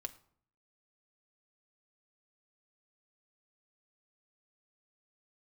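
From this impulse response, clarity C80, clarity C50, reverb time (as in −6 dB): 20.0 dB, 17.0 dB, 0.60 s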